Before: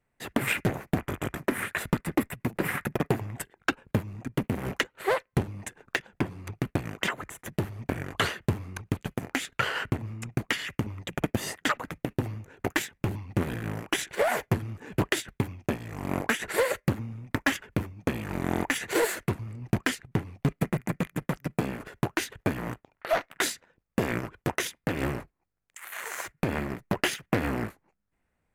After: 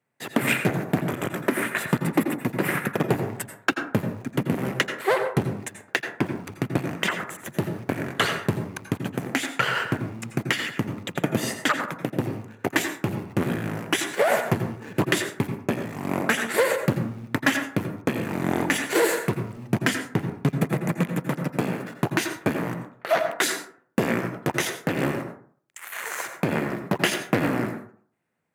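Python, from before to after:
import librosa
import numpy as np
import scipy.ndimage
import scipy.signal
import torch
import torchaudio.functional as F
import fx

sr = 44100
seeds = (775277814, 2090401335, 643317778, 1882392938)

p1 = scipy.signal.sosfilt(scipy.signal.butter(4, 120.0, 'highpass', fs=sr, output='sos'), x)
p2 = np.where(np.abs(p1) >= 10.0 ** (-43.0 / 20.0), p1, 0.0)
p3 = p1 + (p2 * 10.0 ** (-5.0 / 20.0))
y = fx.rev_plate(p3, sr, seeds[0], rt60_s=0.51, hf_ratio=0.4, predelay_ms=75, drr_db=6.5)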